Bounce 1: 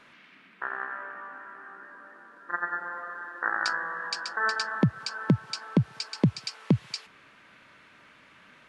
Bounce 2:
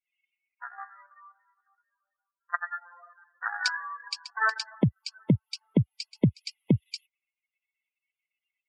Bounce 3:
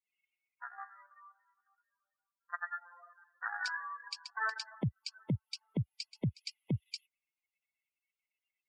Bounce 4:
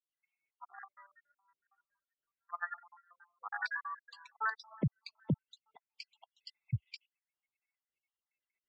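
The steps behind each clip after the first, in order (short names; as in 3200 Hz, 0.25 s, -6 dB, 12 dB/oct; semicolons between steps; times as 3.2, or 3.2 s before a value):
per-bin expansion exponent 3; in parallel at +3 dB: level quantiser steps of 16 dB
limiter -20.5 dBFS, peak gain reduction 9.5 dB; gain -5 dB
random spectral dropouts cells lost 58%; LPF 2900 Hz 12 dB/oct; gain +2 dB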